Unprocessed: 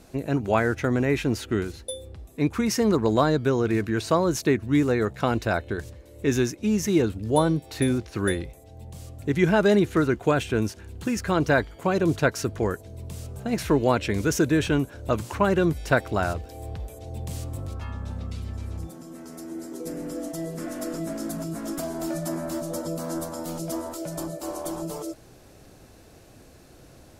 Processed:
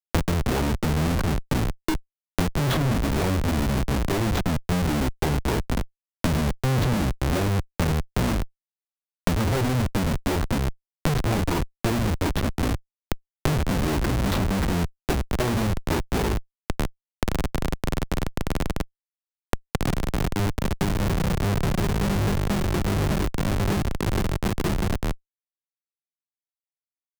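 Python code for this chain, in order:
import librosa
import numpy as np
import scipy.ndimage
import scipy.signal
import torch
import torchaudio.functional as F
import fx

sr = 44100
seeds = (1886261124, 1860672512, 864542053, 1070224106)

y = fx.pitch_bins(x, sr, semitones=-8.5)
y = fx.schmitt(y, sr, flips_db=-28.5)
y = fx.band_squash(y, sr, depth_pct=100)
y = y * librosa.db_to_amplitude(4.0)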